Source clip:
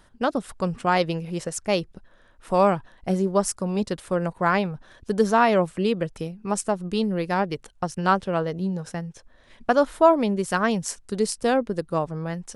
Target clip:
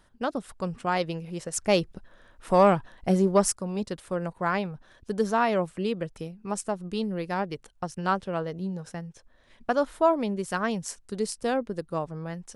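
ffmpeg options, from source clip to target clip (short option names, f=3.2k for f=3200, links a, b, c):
-filter_complex "[0:a]asettb=1/sr,asplit=3[a][b][c];[a]atrim=end=1.534[d];[b]atrim=start=1.53:end=3.53,asetpts=PTS-STARTPTS,afade=t=in:d=0.004:c=qsin,afade=t=out:st=1.996:d=0.004:c=qsin,acontrast=76[e];[c]atrim=start=3.526[f];[d][e]acrossfade=d=0.004:c1=hsin:c2=qsin[g];[g][f]acrossfade=d=0.004:c1=qsin:c2=hsin,volume=-5.5dB"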